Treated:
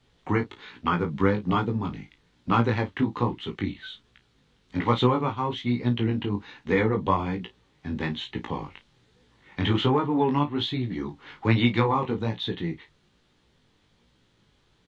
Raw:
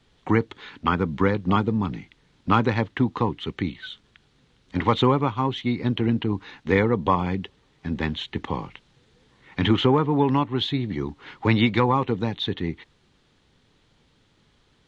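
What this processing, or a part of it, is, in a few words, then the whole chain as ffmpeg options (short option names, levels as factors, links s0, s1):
double-tracked vocal: -filter_complex "[0:a]asplit=2[s0][s1];[s1]adelay=34,volume=0.251[s2];[s0][s2]amix=inputs=2:normalize=0,flanger=delay=16:depth=4.6:speed=1.2"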